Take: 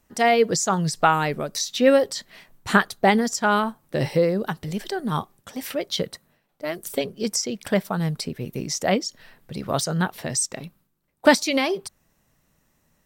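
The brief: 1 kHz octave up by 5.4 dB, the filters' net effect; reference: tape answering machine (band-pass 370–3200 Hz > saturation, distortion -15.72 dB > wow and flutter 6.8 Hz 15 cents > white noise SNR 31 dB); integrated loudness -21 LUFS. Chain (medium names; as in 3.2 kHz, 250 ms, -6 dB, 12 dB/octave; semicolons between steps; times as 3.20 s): band-pass 370–3200 Hz; peaking EQ 1 kHz +7.5 dB; saturation -6.5 dBFS; wow and flutter 6.8 Hz 15 cents; white noise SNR 31 dB; trim +2 dB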